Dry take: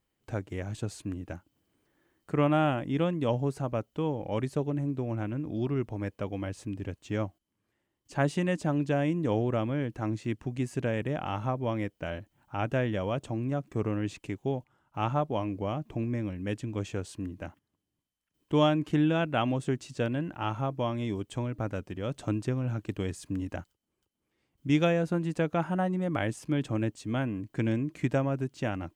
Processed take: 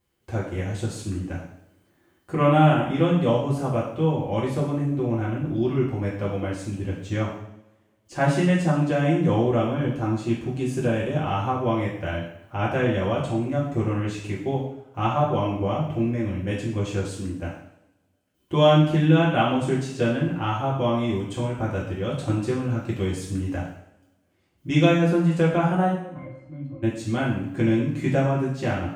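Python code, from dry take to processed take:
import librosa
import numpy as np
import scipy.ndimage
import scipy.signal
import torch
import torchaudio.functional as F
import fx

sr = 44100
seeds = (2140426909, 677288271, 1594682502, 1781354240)

y = fx.peak_eq(x, sr, hz=2000.0, db=-10.0, octaves=0.21, at=(9.64, 11.24))
y = fx.octave_resonator(y, sr, note='C', decay_s=0.27, at=(25.92, 26.82), fade=0.02)
y = fx.rev_double_slope(y, sr, seeds[0], early_s=0.69, late_s=2.0, knee_db=-25, drr_db=-6.0)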